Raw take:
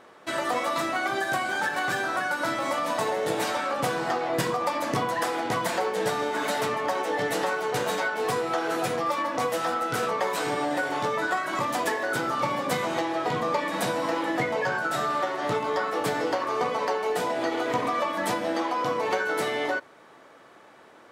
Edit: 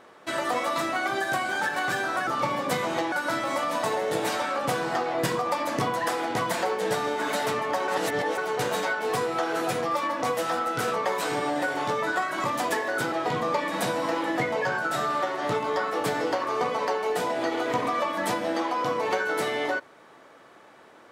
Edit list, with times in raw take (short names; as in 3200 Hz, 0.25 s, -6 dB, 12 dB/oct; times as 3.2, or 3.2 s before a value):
7.03–7.53 reverse
12.27–13.12 move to 2.27